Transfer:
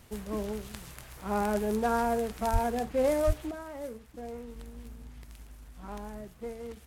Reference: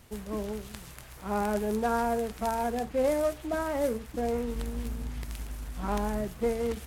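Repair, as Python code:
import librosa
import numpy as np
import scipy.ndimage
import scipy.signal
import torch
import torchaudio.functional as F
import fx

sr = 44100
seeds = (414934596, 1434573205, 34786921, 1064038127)

y = fx.highpass(x, sr, hz=140.0, slope=24, at=(2.52, 2.64), fade=0.02)
y = fx.highpass(y, sr, hz=140.0, slope=24, at=(3.26, 3.38), fade=0.02)
y = fx.gain(y, sr, db=fx.steps((0.0, 0.0), (3.51, 11.0)))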